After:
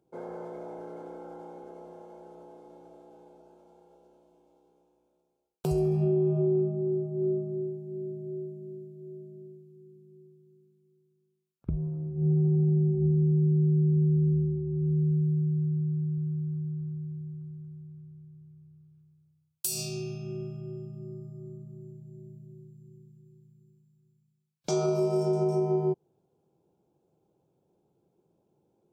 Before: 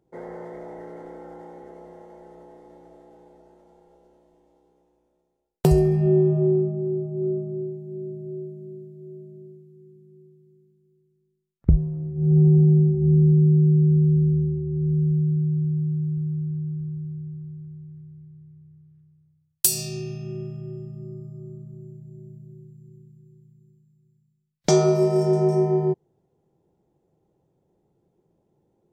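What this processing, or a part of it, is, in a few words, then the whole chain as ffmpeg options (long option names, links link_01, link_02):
PA system with an anti-feedback notch: -af "highpass=frequency=130:poles=1,asuperstop=centerf=1900:order=4:qfactor=4.1,alimiter=limit=-16.5dB:level=0:latency=1:release=160,volume=-2dB"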